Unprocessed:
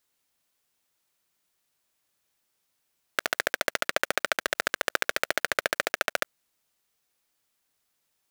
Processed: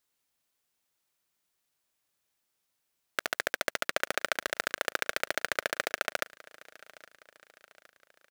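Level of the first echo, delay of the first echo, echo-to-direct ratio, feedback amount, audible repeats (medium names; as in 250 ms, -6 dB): -21.5 dB, 815 ms, -20.5 dB, 50%, 3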